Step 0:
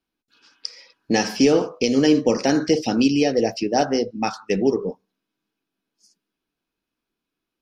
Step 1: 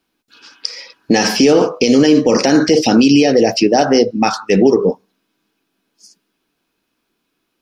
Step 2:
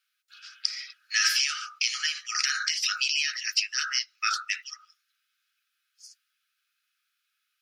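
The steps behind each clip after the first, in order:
low-shelf EQ 100 Hz −8.5 dB; boost into a limiter +14.5 dB; level −1 dB
linear-phase brick-wall high-pass 1,200 Hz; level −5 dB

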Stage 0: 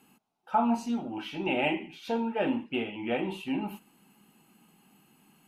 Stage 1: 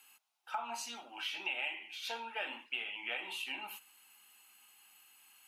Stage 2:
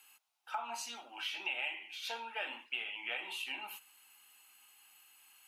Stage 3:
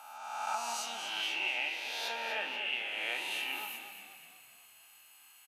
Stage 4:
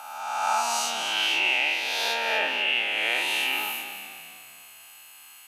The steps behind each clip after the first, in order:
Bessel high-pass filter 2,000 Hz, order 2; downward compressor 6 to 1, threshold −40 dBFS, peak gain reduction 10.5 dB; level +5.5 dB
low-shelf EQ 180 Hz −10.5 dB
peak hold with a rise ahead of every peak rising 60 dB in 1.55 s; echo with shifted repeats 243 ms, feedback 50%, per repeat −33 Hz, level −9 dB
every bin's largest magnitude spread in time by 120 ms; level +6.5 dB

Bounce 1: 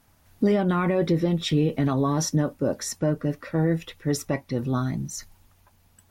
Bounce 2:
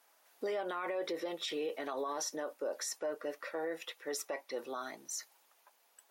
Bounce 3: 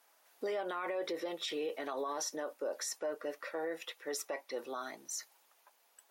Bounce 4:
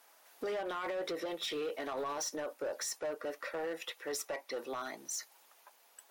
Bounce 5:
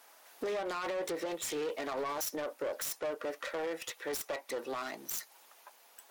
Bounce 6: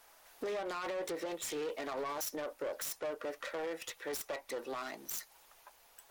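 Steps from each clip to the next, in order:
high-pass filter 450 Hz 24 dB per octave; brickwall limiter −25.5 dBFS, peak gain reduction 10 dB; level −3.5 dB
low-shelf EQ 72 Hz −9.5 dB
in parallel at −1.5 dB: downward compressor, threshold −48 dBFS, peak gain reduction 14 dB; on the sum: gain into a clipping stage and back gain 33 dB
phase distortion by the signal itself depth 0.079 ms; in parallel at −3 dB: downward compressor, threshold −45 dBFS, peak gain reduction 10 dB
background noise brown −77 dBFS; level −2.5 dB

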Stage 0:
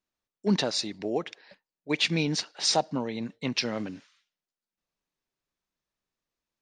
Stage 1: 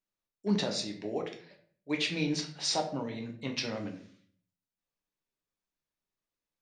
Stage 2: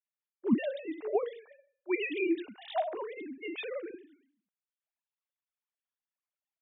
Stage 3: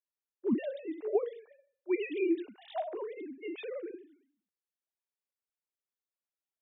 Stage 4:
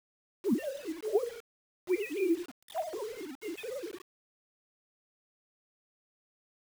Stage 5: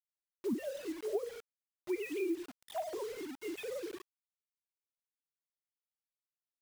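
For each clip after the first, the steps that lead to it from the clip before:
convolution reverb RT60 0.50 s, pre-delay 6 ms, DRR 2 dB; level −7 dB
three sine waves on the formant tracks
parametric band 390 Hz +8.5 dB 1.1 octaves; level −7 dB
bit-depth reduction 8 bits, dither none
downward compressor 2 to 1, threshold −34 dBFS, peak gain reduction 6.5 dB; level −1 dB

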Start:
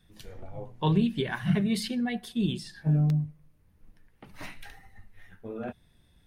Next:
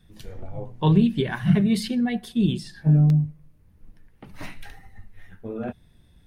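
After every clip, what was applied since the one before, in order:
low-shelf EQ 440 Hz +5.5 dB
level +2 dB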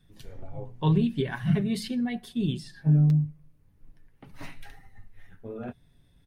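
comb filter 7.3 ms, depth 34%
level −5.5 dB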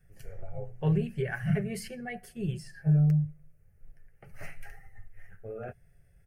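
phaser with its sweep stopped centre 1,000 Hz, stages 6
level +1.5 dB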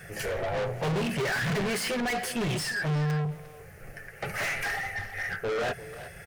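mid-hump overdrive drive 43 dB, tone 5,100 Hz, clips at −16.5 dBFS
far-end echo of a speakerphone 350 ms, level −10 dB
level −5.5 dB

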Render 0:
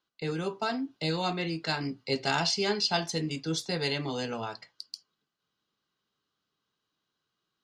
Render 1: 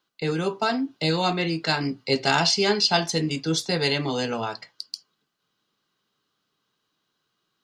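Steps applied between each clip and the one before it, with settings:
parametric band 60 Hz −13 dB 0.67 octaves
level +7 dB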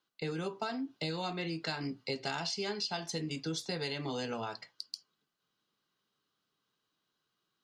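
downward compressor 6 to 1, threshold −26 dBFS, peak gain reduction 11 dB
level −7 dB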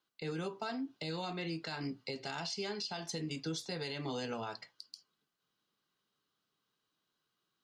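brickwall limiter −27.5 dBFS, peak gain reduction 7.5 dB
level −1.5 dB

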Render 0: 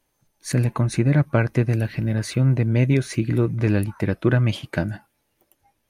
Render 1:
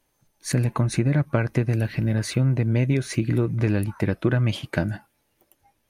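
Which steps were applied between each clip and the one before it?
downward compressor 4 to 1, threshold −18 dBFS, peak gain reduction 5 dB
level +1 dB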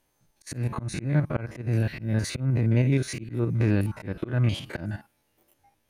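spectrum averaged block by block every 50 ms
volume swells 181 ms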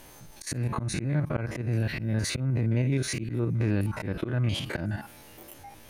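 envelope flattener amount 50%
level −5 dB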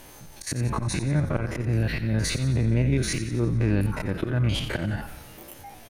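echo with shifted repeats 89 ms, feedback 59%, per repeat −59 Hz, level −11.5 dB
level +3 dB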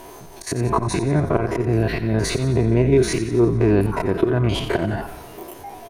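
hollow resonant body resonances 400/690/970 Hz, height 15 dB, ringing for 35 ms
level +2 dB

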